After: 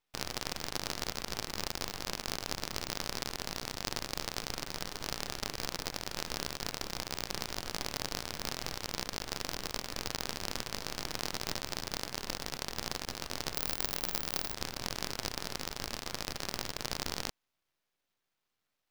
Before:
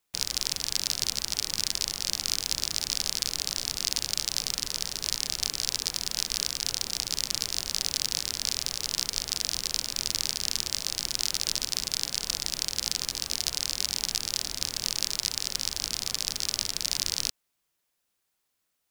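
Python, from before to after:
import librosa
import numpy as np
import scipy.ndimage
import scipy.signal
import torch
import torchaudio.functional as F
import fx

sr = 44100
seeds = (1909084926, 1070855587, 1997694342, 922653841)

y = scipy.signal.medfilt(x, 5)
y = fx.resample_bad(y, sr, factor=2, down='filtered', up='zero_stuff', at=(13.55, 14.54))
y = np.maximum(y, 0.0)
y = y * 10.0 ** (2.0 / 20.0)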